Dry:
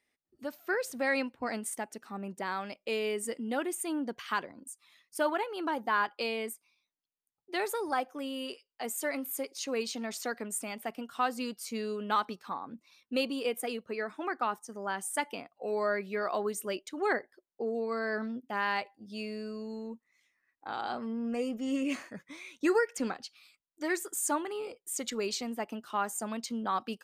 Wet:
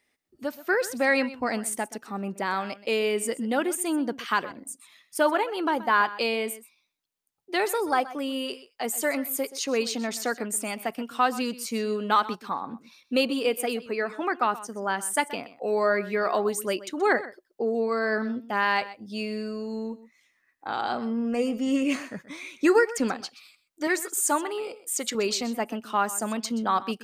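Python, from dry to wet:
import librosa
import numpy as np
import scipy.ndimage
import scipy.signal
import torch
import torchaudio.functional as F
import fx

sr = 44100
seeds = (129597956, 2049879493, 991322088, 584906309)

y = fx.highpass(x, sr, hz=300.0, slope=6, at=(23.87, 25.15))
y = y + 10.0 ** (-16.5 / 20.0) * np.pad(y, (int(127 * sr / 1000.0), 0))[:len(y)]
y = y * 10.0 ** (7.0 / 20.0)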